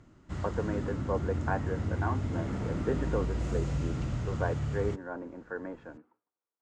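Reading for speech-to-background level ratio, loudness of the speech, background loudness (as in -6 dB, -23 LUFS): -3.0 dB, -37.0 LUFS, -34.0 LUFS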